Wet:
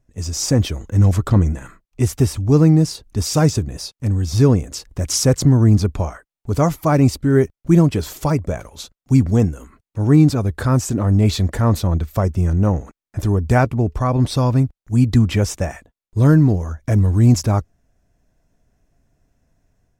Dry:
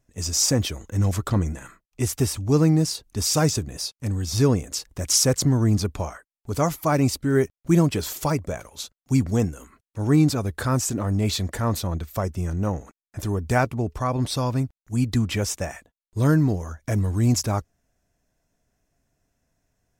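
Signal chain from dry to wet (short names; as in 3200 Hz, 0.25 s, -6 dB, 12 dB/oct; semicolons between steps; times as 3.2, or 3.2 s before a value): tilt -1.5 dB/oct; AGC gain up to 5 dB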